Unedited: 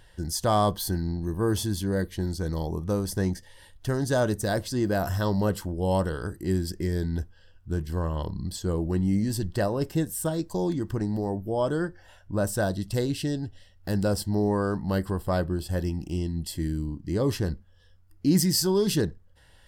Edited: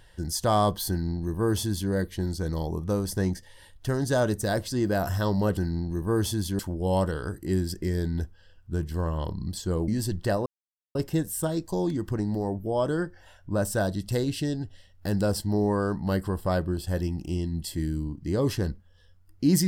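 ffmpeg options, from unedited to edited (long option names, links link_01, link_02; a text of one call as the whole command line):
ffmpeg -i in.wav -filter_complex "[0:a]asplit=5[link_01][link_02][link_03][link_04][link_05];[link_01]atrim=end=5.572[link_06];[link_02]atrim=start=0.888:end=1.912[link_07];[link_03]atrim=start=5.568:end=8.862[link_08];[link_04]atrim=start=9.188:end=9.77,asetpts=PTS-STARTPTS,afade=type=out:start_time=0.578:duration=0.004:curve=hsin,apad=pad_dur=0.49[link_09];[link_05]atrim=start=9.77,asetpts=PTS-STARTPTS,afade=type=in:duration=0.004:curve=hsin[link_10];[link_06][link_07]acrossfade=duration=0.004:curve1=hsin:curve2=hsin[link_11];[link_11][link_08]acrossfade=duration=0.004:curve1=hsin:curve2=hsin[link_12];[link_09][link_10]concat=n=2:v=0:a=1[link_13];[link_12][link_13]acrossfade=duration=0.004:curve1=hsin:curve2=hsin" out.wav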